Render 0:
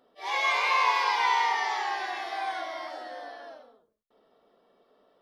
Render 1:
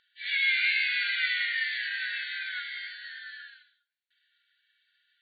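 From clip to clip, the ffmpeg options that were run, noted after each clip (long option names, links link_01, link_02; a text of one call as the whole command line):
ffmpeg -i in.wav -filter_complex "[0:a]asplit=2[link_01][link_02];[link_02]acompressor=threshold=-33dB:ratio=6,volume=1.5dB[link_03];[link_01][link_03]amix=inputs=2:normalize=0,afftfilt=real='re*between(b*sr/4096,1400,4600)':imag='im*between(b*sr/4096,1400,4600)':win_size=4096:overlap=0.75" out.wav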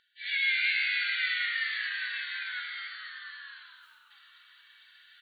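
ffmpeg -i in.wav -filter_complex "[0:a]areverse,acompressor=mode=upward:threshold=-41dB:ratio=2.5,areverse,asplit=8[link_01][link_02][link_03][link_04][link_05][link_06][link_07][link_08];[link_02]adelay=223,afreqshift=-90,volume=-11dB[link_09];[link_03]adelay=446,afreqshift=-180,volume=-15.6dB[link_10];[link_04]adelay=669,afreqshift=-270,volume=-20.2dB[link_11];[link_05]adelay=892,afreqshift=-360,volume=-24.7dB[link_12];[link_06]adelay=1115,afreqshift=-450,volume=-29.3dB[link_13];[link_07]adelay=1338,afreqshift=-540,volume=-33.9dB[link_14];[link_08]adelay=1561,afreqshift=-630,volume=-38.5dB[link_15];[link_01][link_09][link_10][link_11][link_12][link_13][link_14][link_15]amix=inputs=8:normalize=0,volume=-2dB" out.wav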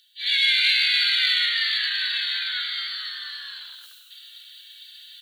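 ffmpeg -i in.wav -filter_complex "[0:a]acrossover=split=1700[link_01][link_02];[link_01]aeval=exprs='val(0)*gte(abs(val(0)),0.00168)':channel_layout=same[link_03];[link_02]aexciter=amount=2.8:drive=9.4:freq=3100[link_04];[link_03][link_04]amix=inputs=2:normalize=0,volume=4dB" out.wav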